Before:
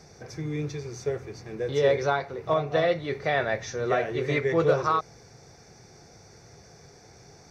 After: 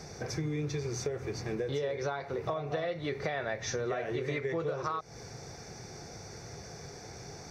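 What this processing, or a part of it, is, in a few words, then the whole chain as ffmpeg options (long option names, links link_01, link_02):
serial compression, peaks first: -af "acompressor=threshold=-32dB:ratio=4,acompressor=threshold=-37dB:ratio=3,volume=5.5dB"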